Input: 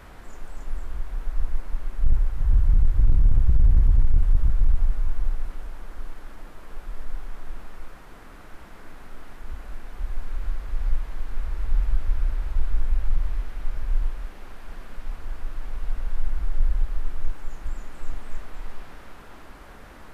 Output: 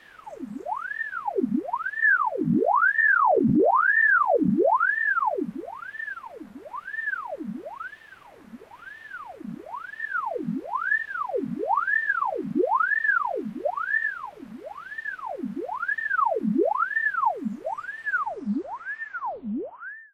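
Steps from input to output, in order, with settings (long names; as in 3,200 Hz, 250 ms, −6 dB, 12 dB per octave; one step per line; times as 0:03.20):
turntable brake at the end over 2.60 s
ring modulator whose carrier an LFO sweeps 1,000 Hz, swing 80%, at 1 Hz
level −3.5 dB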